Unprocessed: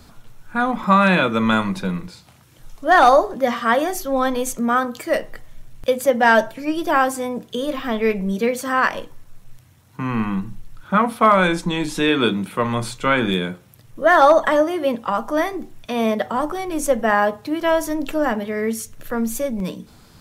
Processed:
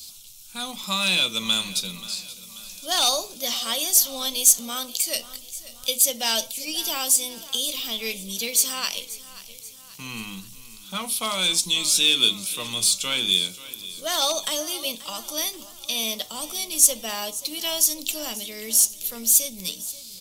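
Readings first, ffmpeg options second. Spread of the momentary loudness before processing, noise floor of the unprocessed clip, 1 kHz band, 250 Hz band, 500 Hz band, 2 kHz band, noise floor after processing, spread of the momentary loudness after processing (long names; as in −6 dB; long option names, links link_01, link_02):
13 LU, −50 dBFS, −16.0 dB, −16.0 dB, −16.0 dB, −10.5 dB, −44 dBFS, 18 LU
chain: -filter_complex "[0:a]aexciter=amount=14.3:drive=9.4:freq=2800,asplit=2[link_01][link_02];[link_02]aecho=0:1:533|1066|1599|2132|2665:0.141|0.0735|0.0382|0.0199|0.0103[link_03];[link_01][link_03]amix=inputs=2:normalize=0,volume=-16dB"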